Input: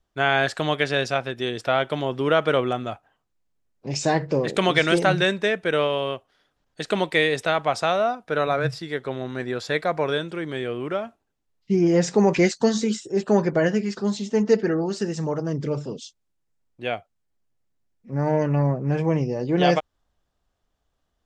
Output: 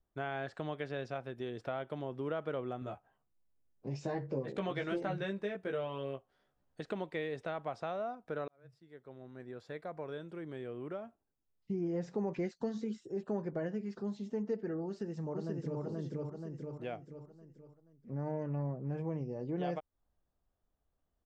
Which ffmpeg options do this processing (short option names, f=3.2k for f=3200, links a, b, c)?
-filter_complex "[0:a]asettb=1/sr,asplit=3[a][b][c];[a]atrim=end=2.804[d];[b]atrim=start=2.8:end=6.81,asetpts=PTS-STARTPTS,afade=t=in:d=0.004:c=qsin,afade=t=out:st=4.006:d=0.004:c=qsin,asplit=2[e][f];[f]adelay=15,volume=-3dB[g];[e][g]amix=inputs=2:normalize=0,atrim=end_sample=176841[h];[c]atrim=start=6.806[i];[d][h]acrossfade=d=0.004:c1=hsin:c2=qsin[j];[j][i]acrossfade=d=0.004:c1=qsin:c2=hsin,asplit=2[k][l];[l]afade=t=in:st=14.86:d=0.01,afade=t=out:st=15.81:d=0.01,aecho=0:1:480|960|1440|1920|2400:0.944061|0.377624|0.15105|0.0604199|0.024168[m];[k][m]amix=inputs=2:normalize=0,asplit=2[n][o];[n]atrim=end=8.48,asetpts=PTS-STARTPTS,afade=t=out:st=8.476:d=0.004:c=hsin[p];[o]atrim=start=8.48,asetpts=PTS-STARTPTS,afade=t=in:d=3.42[q];[p][q]concat=n=2:v=0:a=1,acrossover=split=6100[r][s];[s]acompressor=threshold=-59dB:ratio=4:attack=1:release=60[t];[r][t]amix=inputs=2:normalize=0,equalizer=f=4.6k:w=0.33:g=-11,acompressor=threshold=-34dB:ratio=2,volume=-6.5dB"